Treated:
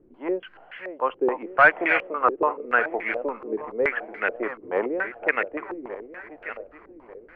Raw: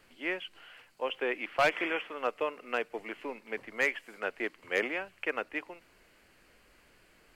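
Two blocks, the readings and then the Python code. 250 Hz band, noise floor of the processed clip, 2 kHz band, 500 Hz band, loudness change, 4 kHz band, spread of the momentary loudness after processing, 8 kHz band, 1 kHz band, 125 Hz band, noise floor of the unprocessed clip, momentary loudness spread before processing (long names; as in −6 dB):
+9.0 dB, −52 dBFS, +10.0 dB, +8.5 dB, +9.0 dB, −4.5 dB, 19 LU, below −15 dB, +11.5 dB, +6.5 dB, −63 dBFS, 13 LU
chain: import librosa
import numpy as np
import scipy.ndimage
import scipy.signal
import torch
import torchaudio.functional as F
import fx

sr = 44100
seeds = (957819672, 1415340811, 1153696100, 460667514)

y = fx.reverse_delay_fb(x, sr, ms=595, feedback_pct=54, wet_db=-11)
y = fx.filter_held_lowpass(y, sr, hz=7.0, low_hz=350.0, high_hz=2000.0)
y = y * librosa.db_to_amplitude(5.0)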